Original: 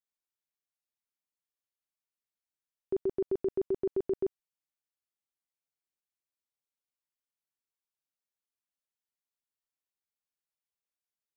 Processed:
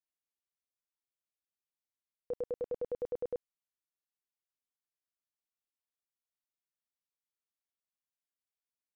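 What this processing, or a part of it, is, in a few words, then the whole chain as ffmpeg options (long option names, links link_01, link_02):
nightcore: -af "asetrate=56007,aresample=44100,volume=-6dB"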